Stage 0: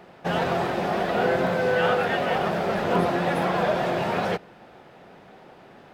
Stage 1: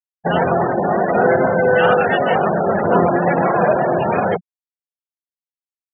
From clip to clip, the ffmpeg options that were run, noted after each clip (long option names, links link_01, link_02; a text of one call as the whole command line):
ffmpeg -i in.wav -af "bandreject=frequency=60:width_type=h:width=6,bandreject=frequency=120:width_type=h:width=6,bandreject=frequency=180:width_type=h:width=6,anlmdn=3.98,afftfilt=real='re*gte(hypot(re,im),0.0631)':imag='im*gte(hypot(re,im),0.0631)':win_size=1024:overlap=0.75,volume=8.5dB" out.wav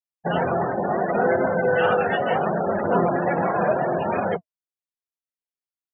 ffmpeg -i in.wav -af "flanger=delay=3.2:depth=6.9:regen=-61:speed=0.72:shape=sinusoidal,volume=-2dB" out.wav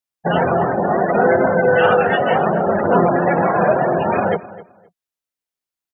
ffmpeg -i in.wav -filter_complex "[0:a]asplit=2[link_01][link_02];[link_02]adelay=260,lowpass=frequency=2700:poles=1,volume=-17.5dB,asplit=2[link_03][link_04];[link_04]adelay=260,lowpass=frequency=2700:poles=1,volume=0.2[link_05];[link_01][link_03][link_05]amix=inputs=3:normalize=0,volume=6dB" out.wav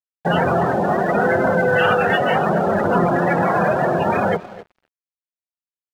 ffmpeg -i in.wav -filter_complex "[0:a]acrossover=split=190|1200[link_01][link_02][link_03];[link_02]alimiter=limit=-14dB:level=0:latency=1[link_04];[link_01][link_04][link_03]amix=inputs=3:normalize=0,aeval=exprs='sgn(val(0))*max(abs(val(0))-0.00708,0)':channel_layout=same,volume=2dB" out.wav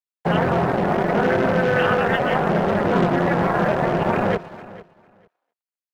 ffmpeg -i in.wav -filter_complex "[0:a]acrossover=split=530[link_01][link_02];[link_01]acrusher=bits=3:mix=0:aa=0.5[link_03];[link_02]tremolo=f=240:d=0.947[link_04];[link_03][link_04]amix=inputs=2:normalize=0,aecho=1:1:451|902:0.119|0.0202" out.wav